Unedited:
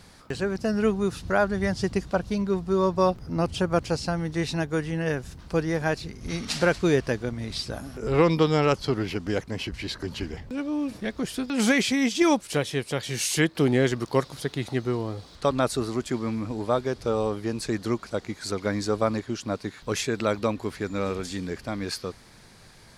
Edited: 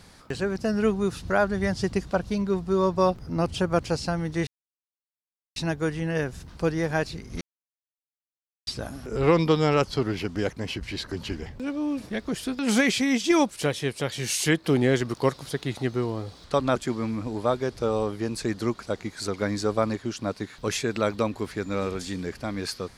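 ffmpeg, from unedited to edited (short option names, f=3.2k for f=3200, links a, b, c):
-filter_complex "[0:a]asplit=5[a][b][c][d][e];[a]atrim=end=4.47,asetpts=PTS-STARTPTS,afade=t=out:st=4.466:d=0.004:c=hsin,apad=pad_dur=1.09[f];[b]atrim=start=4.47:end=6.32,asetpts=PTS-STARTPTS,afade=t=in:d=0.004:c=hsin,afade=t=out:st=1.846:d=0.004:c=hsin[g];[c]atrim=start=6.32:end=7.58,asetpts=PTS-STARTPTS,volume=0[h];[d]atrim=start=7.58:end=15.672,asetpts=PTS-STARTPTS,afade=t=in:d=0.004:c=hsin[i];[e]atrim=start=15.998[j];[f][g][h][i]concat=n=4:v=0:a=1[k];[k][j]acrossfade=d=0.004:c1=hsin:c2=hsin"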